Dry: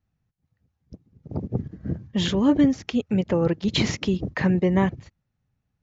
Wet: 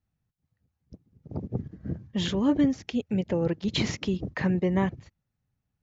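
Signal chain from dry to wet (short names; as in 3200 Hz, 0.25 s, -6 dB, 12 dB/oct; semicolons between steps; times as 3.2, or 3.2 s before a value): 2.81–3.49 bell 1200 Hz -8 dB 0.46 oct; gain -4.5 dB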